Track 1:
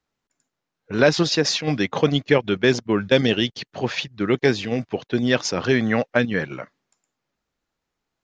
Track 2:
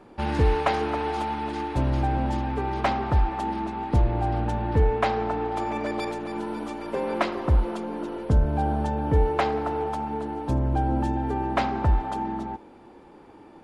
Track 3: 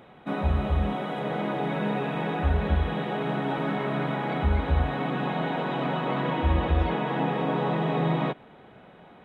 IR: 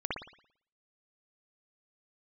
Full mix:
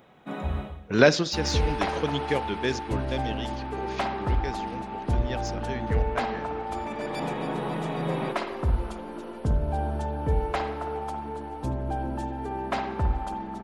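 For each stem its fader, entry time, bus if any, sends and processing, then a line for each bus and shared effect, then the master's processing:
0:01.02 −0.5 dB → 0:01.28 −10.5 dB → 0:02.74 −10.5 dB → 0:03.16 −17 dB, 0.00 s, send −22.5 dB, de-essing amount 40%
−7.5 dB, 1.15 s, send −7.5 dB, no processing
−5.0 dB, 0.00 s, no send, automatic ducking −21 dB, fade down 0.30 s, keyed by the first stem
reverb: on, pre-delay 56 ms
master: high-shelf EQ 6,600 Hz +8 dB

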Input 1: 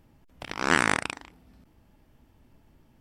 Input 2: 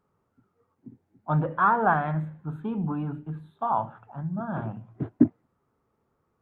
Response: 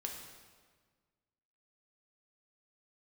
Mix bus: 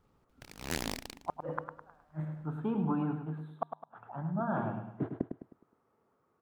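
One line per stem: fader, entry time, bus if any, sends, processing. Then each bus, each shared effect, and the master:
−12.0 dB, 0.00 s, no send, no echo send, lower of the sound and its delayed copy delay 0.38 ms; short delay modulated by noise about 2,200 Hz, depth 0.088 ms
+2.5 dB, 0.00 s, no send, echo send −7.5 dB, high-pass filter 340 Hz 6 dB per octave; high-shelf EQ 2,200 Hz −8 dB; gate with flip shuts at −21 dBFS, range −42 dB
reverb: not used
echo: repeating echo 104 ms, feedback 39%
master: no processing

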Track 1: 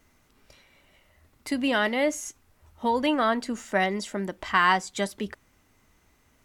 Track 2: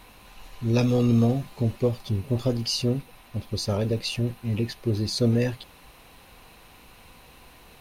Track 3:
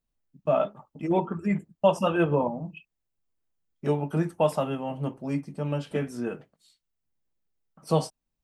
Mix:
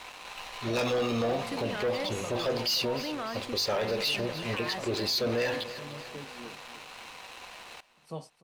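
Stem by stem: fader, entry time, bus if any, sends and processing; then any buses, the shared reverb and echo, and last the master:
−9.0 dB, 0.00 s, no send, no echo send, brickwall limiter −18.5 dBFS, peak gain reduction 10 dB
+1.0 dB, 0.00 s, no send, echo send −19.5 dB, three-way crossover with the lows and the highs turned down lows −23 dB, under 480 Hz, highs −23 dB, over 5,900 Hz; hum removal 49.95 Hz, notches 39; leveller curve on the samples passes 3
−16.0 dB, 0.20 s, no send, echo send −14 dB, no processing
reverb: not used
echo: repeating echo 300 ms, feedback 51%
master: brickwall limiter −23 dBFS, peak gain reduction 8 dB

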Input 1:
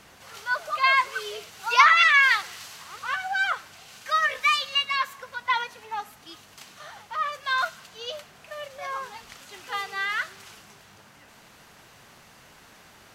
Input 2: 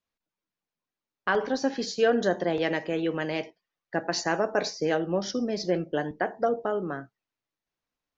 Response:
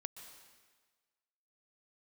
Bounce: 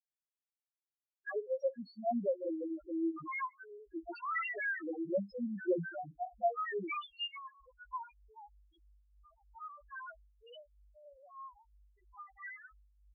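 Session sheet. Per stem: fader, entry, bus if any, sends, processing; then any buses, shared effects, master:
−8.0 dB, 2.45 s, no send, mains hum 50 Hz, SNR 21 dB; amplitude tremolo 3.1 Hz, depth 61%
−4.5 dB, 0.00 s, no send, comb filter 5.5 ms, depth 99%; decimation without filtering 3×; every bin expanded away from the loudest bin 1.5 to 1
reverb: not used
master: spectral peaks only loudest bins 1

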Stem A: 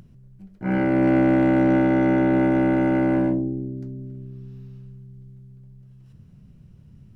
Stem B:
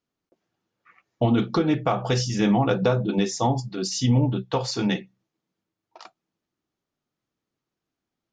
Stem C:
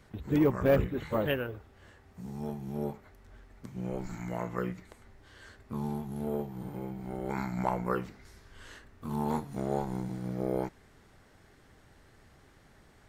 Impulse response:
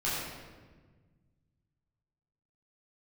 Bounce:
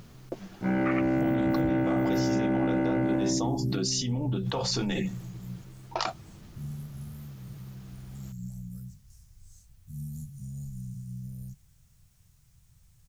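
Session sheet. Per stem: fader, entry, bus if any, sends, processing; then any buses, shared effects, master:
−1.5 dB, 0.00 s, no send, no processing
−12.0 dB, 0.00 s, no send, envelope flattener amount 100%
+2.0 dB, 0.85 s, no send, elliptic band-stop filter 150–6,100 Hz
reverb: not used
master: bit-depth reduction 12 bits, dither triangular; downward compressor 5 to 1, threshold −23 dBFS, peak gain reduction 8 dB

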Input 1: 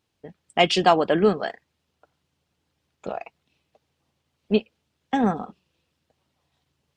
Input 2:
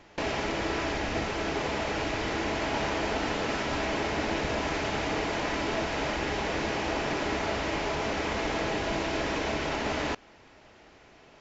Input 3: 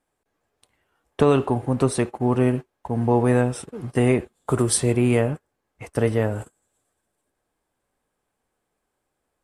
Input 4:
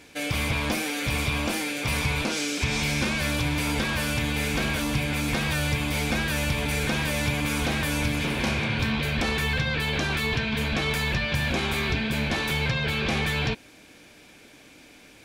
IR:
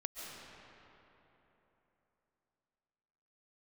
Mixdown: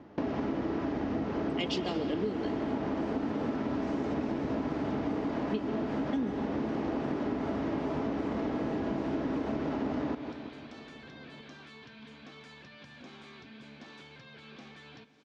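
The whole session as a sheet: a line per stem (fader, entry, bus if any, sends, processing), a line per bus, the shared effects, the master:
−6.5 dB, 1.00 s, send −4 dB, no echo send, flat-topped bell 1,000 Hz −14 dB
−3.0 dB, 0.00 s, no send, echo send −13 dB, spectral tilt −4.5 dB per octave
muted
−15.0 dB, 1.50 s, send −14.5 dB, echo send −18.5 dB, downward compressor 3 to 1, threshold −36 dBFS, peak gain reduction 11.5 dB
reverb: on, RT60 3.5 s, pre-delay 100 ms
echo: repeating echo 171 ms, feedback 53%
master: loudspeaker in its box 170–6,500 Hz, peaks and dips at 260 Hz +9 dB, 1,200 Hz +3 dB, 2,400 Hz −4 dB; downward compressor, threshold −29 dBFS, peak gain reduction 12.5 dB

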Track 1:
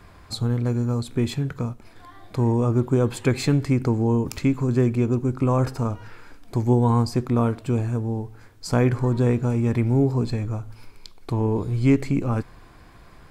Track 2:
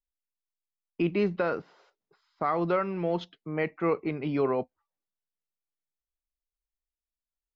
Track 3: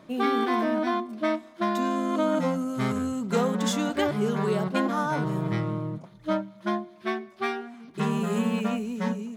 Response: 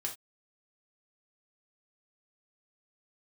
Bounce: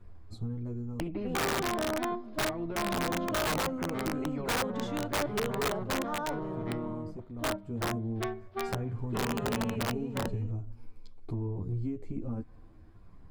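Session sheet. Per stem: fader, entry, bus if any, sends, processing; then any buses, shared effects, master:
−10.5 dB, 0.00 s, bus A, no send, automatic ducking −12 dB, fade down 1.80 s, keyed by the second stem
−2.5 dB, 0.00 s, bus A, no send, spectral tilt −3.5 dB per octave; comb filter 6.1 ms, depth 32%; every bin compressed towards the loudest bin 2 to 1
−5.0 dB, 1.15 s, no bus, no send, three-way crossover with the lows and the highs turned down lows −17 dB, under 340 Hz, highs −15 dB, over 4,600 Hz
bus A: 0.0 dB, multi-voice chorus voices 4, 0.33 Hz, delay 11 ms, depth 2 ms; downward compressor 12 to 1, threshold −37 dBFS, peak gain reduction 14 dB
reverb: not used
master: tilt shelving filter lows +8 dB, about 750 Hz; wrap-around overflow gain 24 dB

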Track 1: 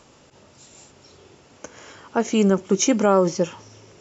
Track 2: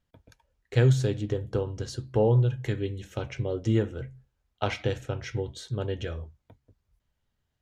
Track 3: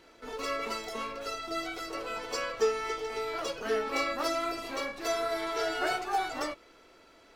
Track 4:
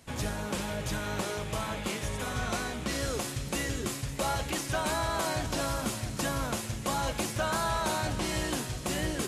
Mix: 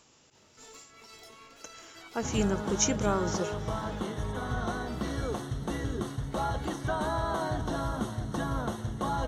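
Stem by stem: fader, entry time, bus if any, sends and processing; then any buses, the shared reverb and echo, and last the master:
−12.0 dB, 0.00 s, no send, no processing
muted
−19.0 dB, 0.35 s, no send, compressor whose output falls as the input rises −37 dBFS, ratio −0.5
+1.5 dB, 2.15 s, no send, moving average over 18 samples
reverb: not used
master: high-shelf EQ 2,500 Hz +9 dB; notch filter 560 Hz, Q 12

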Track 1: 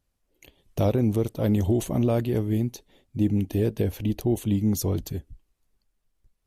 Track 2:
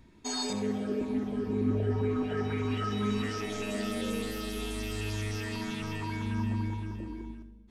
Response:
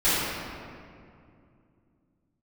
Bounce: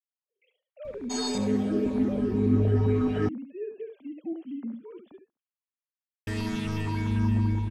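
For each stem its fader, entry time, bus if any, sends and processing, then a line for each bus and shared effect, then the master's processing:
−14.0 dB, 0.00 s, no send, echo send −7.5 dB, three sine waves on the formant tracks
+1.0 dB, 0.85 s, muted 0:03.29–0:06.27, no send, no echo send, low-shelf EQ 330 Hz +7 dB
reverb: not used
echo: single-tap delay 71 ms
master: no processing

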